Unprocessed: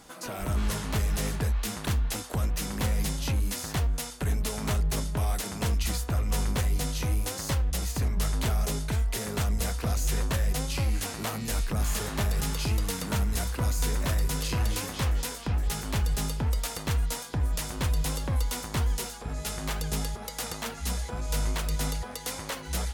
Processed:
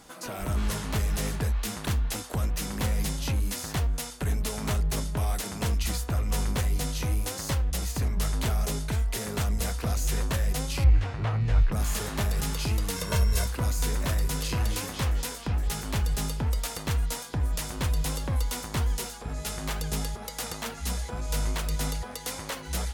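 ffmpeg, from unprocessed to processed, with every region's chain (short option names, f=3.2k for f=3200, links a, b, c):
-filter_complex "[0:a]asettb=1/sr,asplit=3[a][b][c];[a]atrim=end=10.844[d];[b]atrim=start=10.84:end=11.72,asetpts=PTS-STARTPTS,afade=t=in:d=0.004:c=qsin,afade=t=out:st=0.876:d=0.004:c=qsin,lowpass=2.4k,lowshelf=f=160:t=q:w=3:g=7.5[e];[c]atrim=start=11.716[f];[d][e]acrossfade=d=0.004:c1=hsin:c2=qsin[g];[g][f]acrossfade=d=0.004:c1=qsin:c2=hsin,asettb=1/sr,asplit=3[h][i][j];[h]atrim=end=12.964[k];[i]atrim=start=12.96:end=13.46,asetpts=PTS-STARTPTS,afade=t=in:d=0.004:c=qsin,afade=t=out:st=0.496:d=0.004:c=qsin,aeval=exprs='val(0)+0.00794*sin(2*PI*5500*n/s)':c=same,aecho=1:1:1.9:0.77,atrim=end_sample=22050[l];[j]atrim=start=13.456[m];[k][l]acrossfade=d=0.004:c1=hsin:c2=qsin[n];[n][m]acrossfade=d=0.004:c1=qsin:c2=hsin"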